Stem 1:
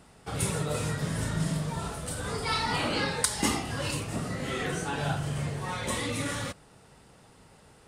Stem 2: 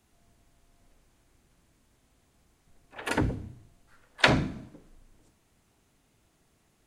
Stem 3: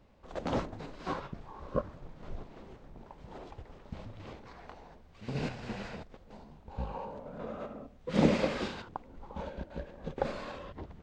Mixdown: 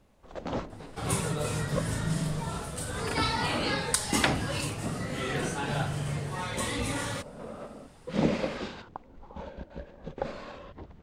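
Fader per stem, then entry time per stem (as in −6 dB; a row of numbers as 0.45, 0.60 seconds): −0.5, −6.0, −1.0 decibels; 0.70, 0.00, 0.00 seconds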